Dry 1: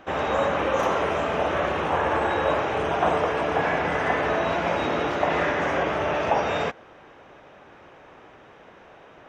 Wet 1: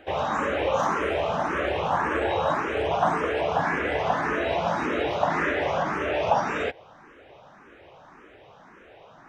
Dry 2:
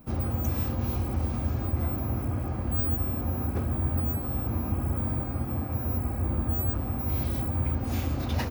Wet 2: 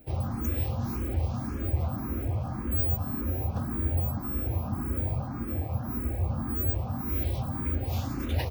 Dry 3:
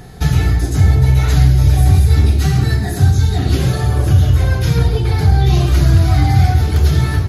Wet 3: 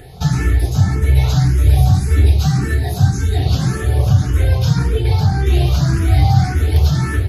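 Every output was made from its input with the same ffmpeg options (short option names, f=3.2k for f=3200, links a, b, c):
-filter_complex "[0:a]asplit=2[a][b];[b]afreqshift=1.8[c];[a][c]amix=inputs=2:normalize=1,volume=1.5dB"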